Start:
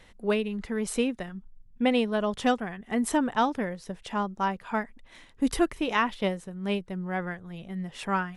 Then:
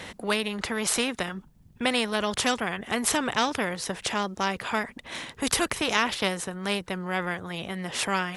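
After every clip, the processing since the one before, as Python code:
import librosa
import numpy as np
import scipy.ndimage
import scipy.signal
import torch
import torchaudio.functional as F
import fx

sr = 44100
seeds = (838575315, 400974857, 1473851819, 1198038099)

y = scipy.signal.sosfilt(scipy.signal.butter(2, 98.0, 'highpass', fs=sr, output='sos'), x)
y = fx.spectral_comp(y, sr, ratio=2.0)
y = F.gain(torch.from_numpy(y), 3.0).numpy()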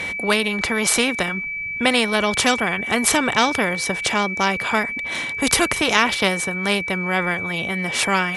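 y = x + 10.0 ** (-32.0 / 20.0) * np.sin(2.0 * np.pi * 2300.0 * np.arange(len(x)) / sr)
y = F.gain(torch.from_numpy(y), 7.0).numpy()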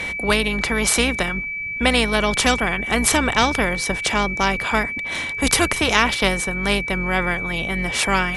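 y = fx.octave_divider(x, sr, octaves=2, level_db=-2.0)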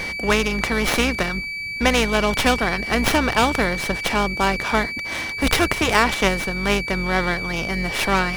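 y = fx.running_max(x, sr, window=5)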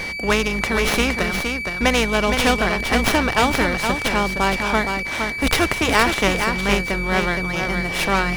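y = x + 10.0 ** (-6.0 / 20.0) * np.pad(x, (int(466 * sr / 1000.0), 0))[:len(x)]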